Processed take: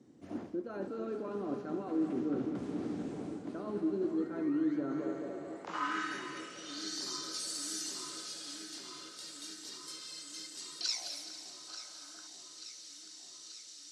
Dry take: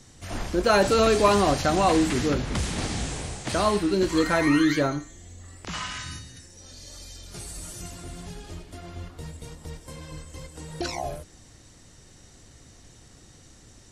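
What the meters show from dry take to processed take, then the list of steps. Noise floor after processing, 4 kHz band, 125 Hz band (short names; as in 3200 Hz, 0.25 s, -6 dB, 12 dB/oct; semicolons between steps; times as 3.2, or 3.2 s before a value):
-52 dBFS, -7.0 dB, -19.0 dB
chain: HPF 130 Hz 12 dB/oct; high shelf 3800 Hz +10 dB; on a send: multi-head echo 71 ms, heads first and third, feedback 65%, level -14 dB; on the sum: dynamic EQ 1400 Hz, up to +8 dB, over -42 dBFS, Q 2.8; reverse; compressor 16:1, threshold -27 dBFS, peak gain reduction 17 dB; reverse; band-pass sweep 290 Hz -> 4600 Hz, 4.84–6.99; echo with dull and thin repeats by turns 0.443 s, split 1500 Hz, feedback 84%, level -11 dB; spectral gain 11.69–12.27, 560–1700 Hz +9 dB; gain +2 dB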